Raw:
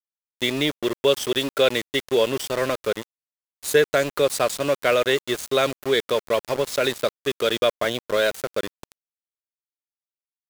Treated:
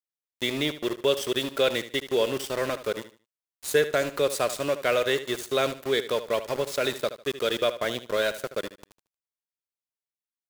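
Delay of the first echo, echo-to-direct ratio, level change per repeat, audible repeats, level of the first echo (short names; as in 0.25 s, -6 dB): 75 ms, -12.5 dB, -11.5 dB, 2, -13.0 dB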